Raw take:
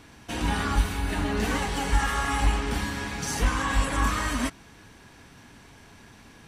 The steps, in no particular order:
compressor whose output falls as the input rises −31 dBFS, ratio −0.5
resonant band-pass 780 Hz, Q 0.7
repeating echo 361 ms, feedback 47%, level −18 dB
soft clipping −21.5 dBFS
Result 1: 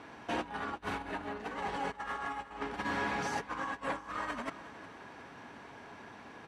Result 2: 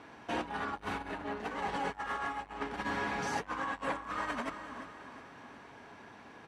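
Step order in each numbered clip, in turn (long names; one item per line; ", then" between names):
compressor whose output falls as the input rises, then repeating echo, then soft clipping, then resonant band-pass
repeating echo, then soft clipping, then compressor whose output falls as the input rises, then resonant band-pass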